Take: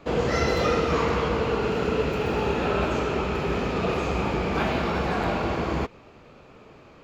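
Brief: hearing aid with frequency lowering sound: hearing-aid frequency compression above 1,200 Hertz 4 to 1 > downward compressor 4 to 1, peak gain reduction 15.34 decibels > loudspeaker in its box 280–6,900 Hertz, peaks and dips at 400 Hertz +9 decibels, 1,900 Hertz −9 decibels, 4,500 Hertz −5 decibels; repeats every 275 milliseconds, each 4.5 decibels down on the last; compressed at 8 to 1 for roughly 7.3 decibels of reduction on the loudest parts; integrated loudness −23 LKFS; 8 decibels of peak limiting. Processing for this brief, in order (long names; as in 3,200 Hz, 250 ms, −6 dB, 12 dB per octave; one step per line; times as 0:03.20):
downward compressor 8 to 1, threshold −27 dBFS
brickwall limiter −27 dBFS
repeating echo 275 ms, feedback 60%, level −4.5 dB
hearing-aid frequency compression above 1,200 Hz 4 to 1
downward compressor 4 to 1, threshold −47 dBFS
loudspeaker in its box 280–6,900 Hz, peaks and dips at 400 Hz +9 dB, 1,900 Hz −9 dB, 4,500 Hz −5 dB
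level +23 dB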